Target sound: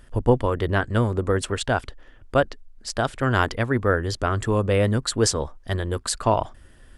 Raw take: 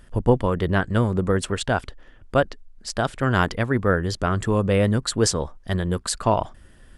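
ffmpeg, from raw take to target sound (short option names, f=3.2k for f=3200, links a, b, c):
-af "equalizer=f=180:t=o:w=0.21:g=-13.5"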